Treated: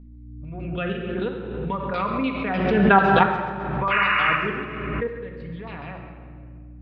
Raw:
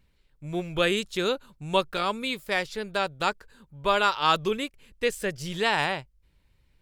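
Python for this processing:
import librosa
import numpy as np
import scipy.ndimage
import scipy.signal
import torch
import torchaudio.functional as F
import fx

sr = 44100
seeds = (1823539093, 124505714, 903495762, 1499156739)

y = fx.spec_ripple(x, sr, per_octave=0.99, drift_hz=0.57, depth_db=7)
y = fx.doppler_pass(y, sr, speed_mps=7, closest_m=2.6, pass_at_s=2.92)
y = scipy.signal.sosfilt(scipy.signal.butter(2, 110.0, 'highpass', fs=sr, output='sos'), y)
y = fx.low_shelf(y, sr, hz=220.0, db=11.0)
y = fx.level_steps(y, sr, step_db=12)
y = fx.add_hum(y, sr, base_hz=60, snr_db=15)
y = fx.filter_lfo_lowpass(y, sr, shape='saw_down', hz=6.7, low_hz=950.0, high_hz=5900.0, q=2.3)
y = fx.spec_paint(y, sr, seeds[0], shape='noise', start_s=3.9, length_s=0.46, low_hz=1000.0, high_hz=2900.0, level_db=-28.0)
y = fx.air_absorb(y, sr, metres=480.0)
y = fx.echo_tape(y, sr, ms=134, feedback_pct=55, wet_db=-14.0, lp_hz=5400.0, drive_db=19.0, wow_cents=22)
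y = fx.room_shoebox(y, sr, seeds[1], volume_m3=2800.0, walls='mixed', distance_m=1.8)
y = fx.pre_swell(y, sr, db_per_s=29.0)
y = y * 10.0 ** (9.0 / 20.0)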